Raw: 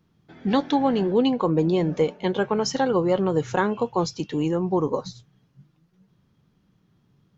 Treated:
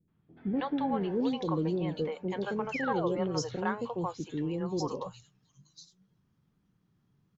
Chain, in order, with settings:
three-band delay without the direct sound lows, mids, highs 80/720 ms, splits 520/3,400 Hz
sound drawn into the spectrogram fall, 0:02.72–0:03.18, 290–2,800 Hz −28 dBFS
level −8 dB

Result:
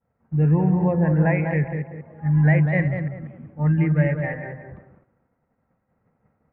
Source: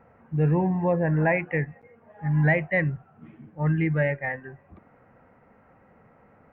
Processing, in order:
delay that plays each chunk backwards 140 ms, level −10.5 dB
bass and treble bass +7 dB, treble −11 dB
on a send: tape delay 192 ms, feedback 42%, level −4 dB, low-pass 1,200 Hz
on the sum: downward expander −41 dBFS
level −1.5 dB

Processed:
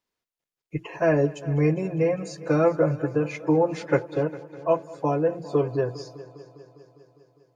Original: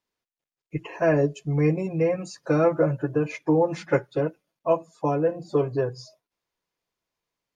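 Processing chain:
echo machine with several playback heads 202 ms, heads first and second, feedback 59%, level −21 dB

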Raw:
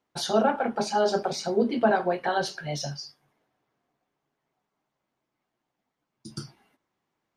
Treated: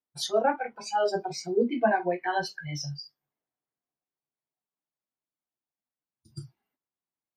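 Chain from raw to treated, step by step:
noise reduction from a noise print of the clip's start 20 dB

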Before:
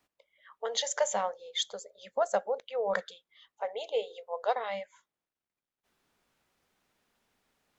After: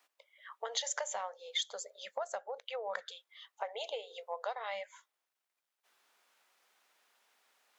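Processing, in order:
downward compressor 16 to 1, threshold −36 dBFS, peak gain reduction 15 dB
high-pass filter 680 Hz 12 dB per octave
level +5 dB

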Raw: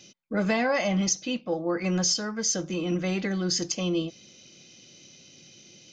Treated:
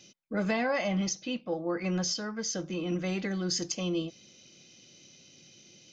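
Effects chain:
0:00.51–0:02.92: low-pass filter 5,500 Hz 12 dB per octave
level −4 dB

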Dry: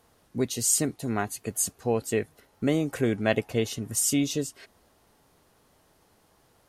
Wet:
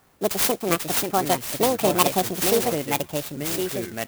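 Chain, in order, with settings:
on a send at −12.5 dB: first difference + convolution reverb RT60 2.0 s, pre-delay 5 ms
on the sum: dynamic equaliser 2,500 Hz, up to +7 dB, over −47 dBFS, Q 0.87
change of speed 1.64×
delay with pitch and tempo change per echo 409 ms, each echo −4 semitones, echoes 3, each echo −6 dB
converter with an unsteady clock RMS 0.064 ms
level +4 dB

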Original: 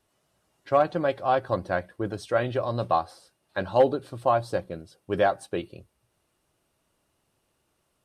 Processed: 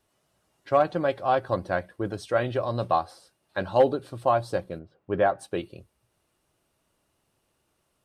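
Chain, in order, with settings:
0:04.78–0:05.38: low-pass filter 1,500 Hz → 2,500 Hz 12 dB per octave

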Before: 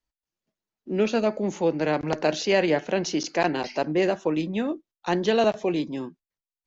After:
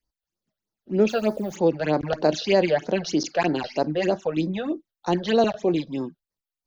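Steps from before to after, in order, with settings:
0:01.09–0:01.56: hold until the input has moved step −46.5 dBFS
all-pass phaser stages 8, 3.2 Hz, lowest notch 270–2,900 Hz
level +3 dB

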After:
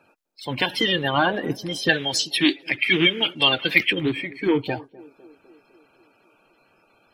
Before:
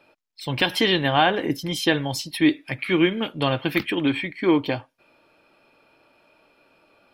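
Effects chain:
spectral magnitudes quantised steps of 30 dB
0:01.89–0:03.93: meter weighting curve D
feedback echo with a band-pass in the loop 253 ms, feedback 64%, band-pass 390 Hz, level −21 dB
level −1 dB

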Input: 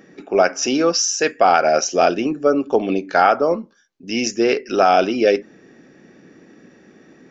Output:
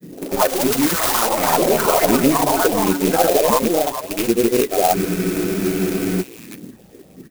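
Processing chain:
loose part that buzzes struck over −32 dBFS, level −11 dBFS
low-shelf EQ 420 Hz +11.5 dB
notch filter 1,400 Hz, Q 12
in parallel at −2 dB: compressor whose output falls as the input rises −18 dBFS, ratio −1
on the sum: all-pass phaser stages 4, 1.4 Hz, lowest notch 170–1,600 Hz
granular cloud, pitch spread up and down by 0 semitones
on a send: echo through a band-pass that steps 590 ms, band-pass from 910 Hz, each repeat 1.4 octaves, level −8.5 dB
on the sum: delay with pitch and tempo change per echo 101 ms, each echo +6 semitones, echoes 3
frozen spectrum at 0:04.96, 1.26 s
converter with an unsteady clock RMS 0.08 ms
level −4.5 dB

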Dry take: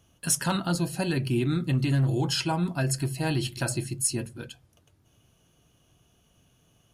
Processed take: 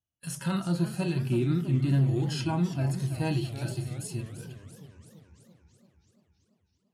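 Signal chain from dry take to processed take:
noise gate −57 dBFS, range −27 dB
harmonic and percussive parts rebalanced percussive −17 dB
feedback echo with a swinging delay time 333 ms, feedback 61%, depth 208 cents, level −12 dB

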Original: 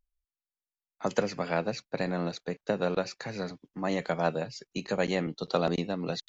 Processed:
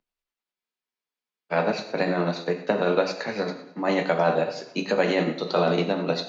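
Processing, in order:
three-way crossover with the lows and the highs turned down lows −20 dB, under 190 Hz, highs −13 dB, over 4,800 Hz
coupled-rooms reverb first 0.61 s, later 1.7 s, from −18 dB, DRR 2.5 dB
in parallel at −0.5 dB: brickwall limiter −19.5 dBFS, peak gain reduction 9 dB
on the sum: amplitude tremolo 10 Hz, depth 34%
frozen spectrum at 0:00.57, 0.96 s
level +2.5 dB

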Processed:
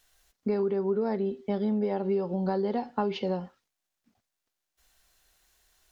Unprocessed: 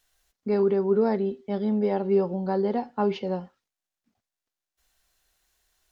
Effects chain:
0:02.03–0:03.37: dynamic equaliser 3,800 Hz, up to +4 dB, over −51 dBFS, Q 1.2
downward compressor 6 to 1, threshold −29 dBFS, peak gain reduction 11.5 dB
level +4 dB

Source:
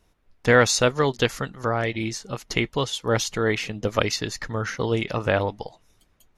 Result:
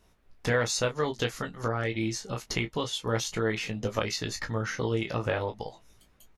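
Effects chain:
downward compressor 2 to 1, threshold −33 dBFS, peak gain reduction 12 dB
on a send: ambience of single reflections 18 ms −5.5 dB, 33 ms −11.5 dB

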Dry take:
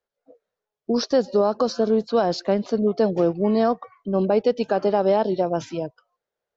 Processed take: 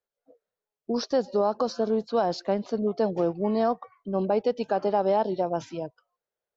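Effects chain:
dynamic equaliser 850 Hz, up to +5 dB, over −34 dBFS, Q 2
level −6 dB

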